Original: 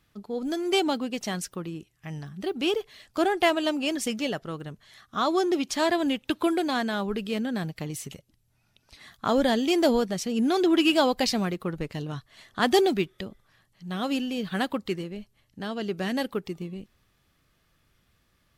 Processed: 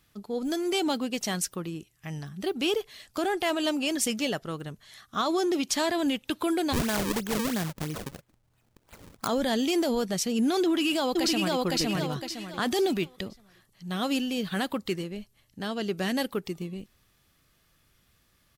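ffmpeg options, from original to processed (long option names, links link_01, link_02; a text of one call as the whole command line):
ffmpeg -i in.wav -filter_complex "[0:a]asplit=3[link_01][link_02][link_03];[link_01]afade=type=out:start_time=6.72:duration=0.02[link_04];[link_02]acrusher=samples=36:mix=1:aa=0.000001:lfo=1:lforange=57.6:lforate=3,afade=type=in:start_time=6.72:duration=0.02,afade=type=out:start_time=9.26:duration=0.02[link_05];[link_03]afade=type=in:start_time=9.26:duration=0.02[link_06];[link_04][link_05][link_06]amix=inputs=3:normalize=0,asplit=2[link_07][link_08];[link_08]afade=type=in:start_time=10.64:duration=0.01,afade=type=out:start_time=11.65:duration=0.01,aecho=0:1:510|1020|1530|2040:0.707946|0.212384|0.0637151|0.0191145[link_09];[link_07][link_09]amix=inputs=2:normalize=0,alimiter=limit=-19dB:level=0:latency=1:release=16,highshelf=frequency=4700:gain=7.5" out.wav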